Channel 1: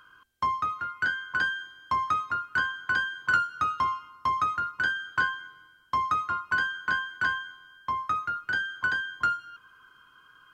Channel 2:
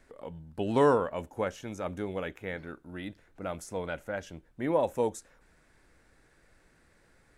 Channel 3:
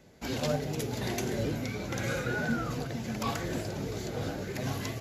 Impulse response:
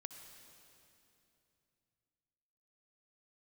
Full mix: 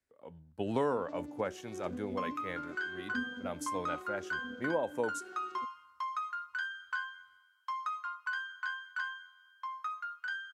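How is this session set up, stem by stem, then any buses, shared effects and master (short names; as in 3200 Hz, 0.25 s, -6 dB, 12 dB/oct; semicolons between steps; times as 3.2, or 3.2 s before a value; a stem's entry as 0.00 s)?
-9.5 dB, 1.75 s, no send, HPF 930 Hz 24 dB/oct
-2.0 dB, 0.00 s, no send, HPF 54 Hz; low shelf 120 Hz -5.5 dB; three-band expander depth 70%
-13.5 dB, 0.65 s, no send, arpeggiated vocoder minor triad, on B3, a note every 0.413 s; bell 150 Hz +7.5 dB 2.7 oct; AM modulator 160 Hz, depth 15%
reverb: off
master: compressor 4:1, threshold -30 dBFS, peak gain reduction 13.5 dB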